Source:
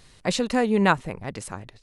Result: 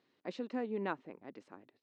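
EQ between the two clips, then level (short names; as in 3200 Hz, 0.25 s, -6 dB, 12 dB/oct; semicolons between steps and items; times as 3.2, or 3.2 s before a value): band-pass 290 Hz, Q 2.5; air absorption 200 m; differentiator; +17.5 dB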